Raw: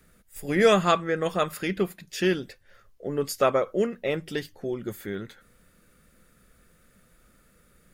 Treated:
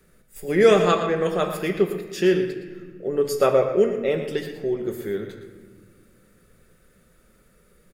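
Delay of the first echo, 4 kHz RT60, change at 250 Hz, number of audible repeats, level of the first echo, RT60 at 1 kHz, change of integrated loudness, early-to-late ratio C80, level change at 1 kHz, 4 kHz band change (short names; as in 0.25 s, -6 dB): 0.116 s, 1.0 s, +3.5 dB, 1, -10.5 dB, 1.5 s, +4.0 dB, 7.5 dB, +1.0 dB, 0.0 dB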